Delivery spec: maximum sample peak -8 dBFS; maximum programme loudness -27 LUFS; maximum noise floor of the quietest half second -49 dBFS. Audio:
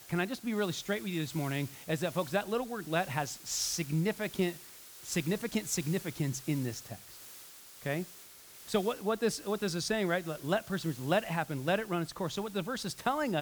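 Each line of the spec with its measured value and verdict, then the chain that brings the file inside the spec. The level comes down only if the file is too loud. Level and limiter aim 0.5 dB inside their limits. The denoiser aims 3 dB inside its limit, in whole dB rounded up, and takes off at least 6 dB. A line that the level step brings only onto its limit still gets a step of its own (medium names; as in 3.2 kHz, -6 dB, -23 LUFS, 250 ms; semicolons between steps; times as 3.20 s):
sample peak -15.5 dBFS: pass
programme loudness -33.5 LUFS: pass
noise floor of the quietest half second -53 dBFS: pass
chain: none needed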